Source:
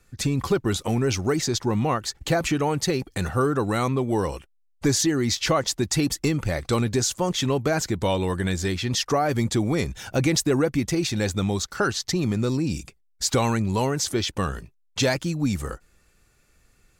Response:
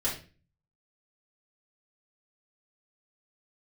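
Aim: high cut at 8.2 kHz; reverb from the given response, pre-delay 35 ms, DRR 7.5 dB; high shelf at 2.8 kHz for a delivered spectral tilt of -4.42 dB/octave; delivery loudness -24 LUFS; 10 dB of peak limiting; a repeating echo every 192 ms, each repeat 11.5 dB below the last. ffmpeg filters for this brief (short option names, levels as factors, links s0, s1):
-filter_complex "[0:a]lowpass=8200,highshelf=f=2800:g=5.5,alimiter=limit=0.126:level=0:latency=1,aecho=1:1:192|384|576:0.266|0.0718|0.0194,asplit=2[s0][s1];[1:a]atrim=start_sample=2205,adelay=35[s2];[s1][s2]afir=irnorm=-1:irlink=0,volume=0.188[s3];[s0][s3]amix=inputs=2:normalize=0,volume=1.26"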